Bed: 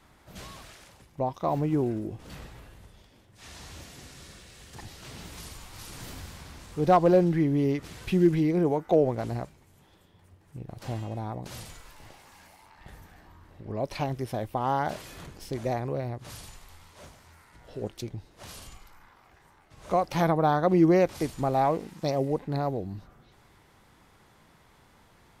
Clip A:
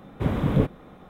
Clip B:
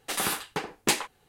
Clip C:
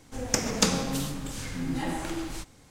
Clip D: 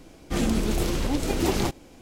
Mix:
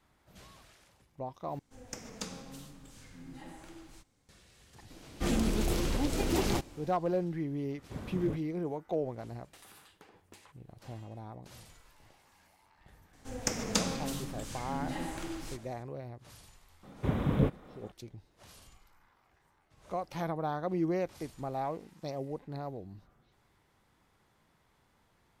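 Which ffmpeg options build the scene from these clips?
-filter_complex "[3:a]asplit=2[a][b];[1:a]asplit=2[c][d];[0:a]volume=-11dB[e];[4:a]asoftclip=type=tanh:threshold=-13dB[f];[2:a]acompressor=threshold=-41dB:ratio=6:attack=3.2:release=140:knee=1:detection=peak[g];[e]asplit=2[h][i];[h]atrim=end=1.594[j];[a]atrim=end=2.7,asetpts=PTS-STARTPTS,volume=-17.5dB[k];[i]atrim=start=4.286[l];[f]atrim=end=2.01,asetpts=PTS-STARTPTS,volume=-4.5dB,afade=t=in:d=0.004:c=hsin,afade=t=out:st=2.006:d=0.004:c=hsin,adelay=4900[m];[c]atrim=end=1.09,asetpts=PTS-STARTPTS,volume=-17dB,afade=t=in:d=0.004:c=hsin,afade=t=out:st=1.086:d=0.004:c=hsin,adelay=339570S[n];[g]atrim=end=1.28,asetpts=PTS-STARTPTS,volume=-12.5dB,afade=t=in:d=0.004:c=hsin,afade=t=out:st=1.276:d=0.004:c=hsin,adelay=9450[o];[b]atrim=end=2.7,asetpts=PTS-STARTPTS,volume=-6.5dB,afade=t=in:d=0.004:c=hsin,afade=t=out:st=2.696:d=0.004:c=hsin,adelay=13130[p];[d]atrim=end=1.09,asetpts=PTS-STARTPTS,volume=-6dB,afade=t=in:d=0.004:c=hsin,afade=t=out:st=1.086:d=0.004:c=hsin,adelay=16830[q];[j][k]acrossfade=d=0.004:c1=hsin:c2=hsin[r];[r][l]acrossfade=d=0.004:c1=hsin:c2=hsin[s];[s][m][n][o][p][q]amix=inputs=6:normalize=0"

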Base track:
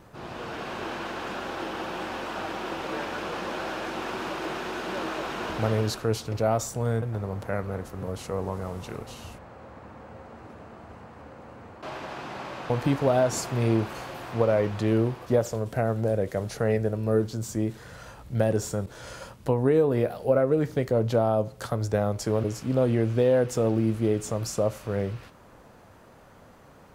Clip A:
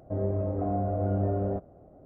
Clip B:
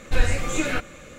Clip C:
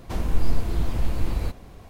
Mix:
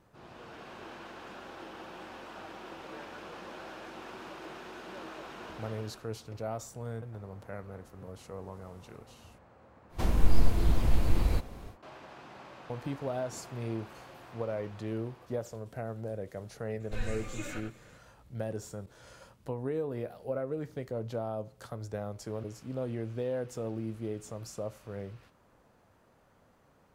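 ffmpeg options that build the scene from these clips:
-filter_complex "[0:a]volume=-12.5dB[a];[2:a]aecho=1:1:96:0.473[b];[3:a]atrim=end=1.89,asetpts=PTS-STARTPTS,volume=-1dB,afade=t=in:d=0.1,afade=t=out:st=1.79:d=0.1,adelay=9890[c];[b]atrim=end=1.18,asetpts=PTS-STARTPTS,volume=-16.5dB,afade=t=in:d=0.004:c=hsin,afade=t=out:st=1.176:d=0.004:c=hsin,adelay=16800[d];[a][c][d]amix=inputs=3:normalize=0"

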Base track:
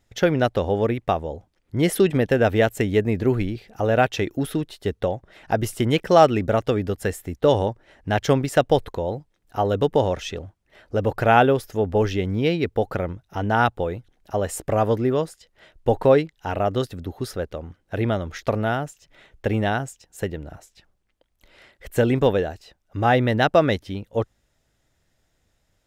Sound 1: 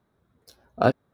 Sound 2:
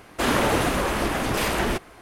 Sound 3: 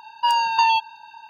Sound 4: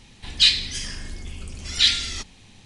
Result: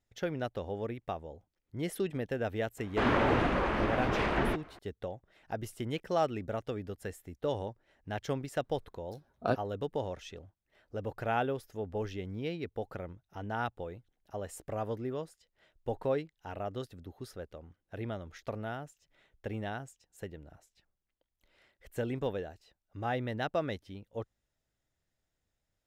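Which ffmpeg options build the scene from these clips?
-filter_complex "[0:a]volume=-15.5dB[a];[2:a]lowpass=2.5k,atrim=end=2.01,asetpts=PTS-STARTPTS,volume=-5.5dB,afade=t=in:d=0.004:c=hsin,afade=t=out:st=2.006:d=0.004:c=hsin,adelay=2780[b];[1:a]atrim=end=1.13,asetpts=PTS-STARTPTS,volume=-10dB,afade=t=in:d=0.004:c=hsin,afade=t=out:st=1.126:d=0.004:c=hsin,adelay=8640[c];[a][b][c]amix=inputs=3:normalize=0"

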